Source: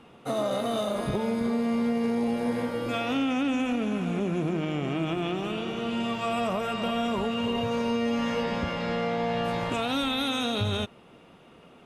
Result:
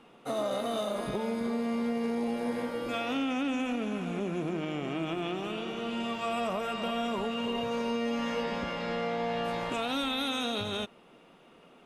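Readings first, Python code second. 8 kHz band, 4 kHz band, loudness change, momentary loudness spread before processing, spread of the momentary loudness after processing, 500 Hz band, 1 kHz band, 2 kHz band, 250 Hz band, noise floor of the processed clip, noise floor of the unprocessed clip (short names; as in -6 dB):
-3.0 dB, -3.0 dB, -4.0 dB, 3 LU, 4 LU, -3.5 dB, -3.0 dB, -3.0 dB, -5.0 dB, -57 dBFS, -53 dBFS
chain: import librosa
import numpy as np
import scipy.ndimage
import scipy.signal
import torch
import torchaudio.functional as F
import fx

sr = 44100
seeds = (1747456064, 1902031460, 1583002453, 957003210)

y = fx.peak_eq(x, sr, hz=90.0, db=-14.0, octaves=1.1)
y = y * librosa.db_to_amplitude(-3.0)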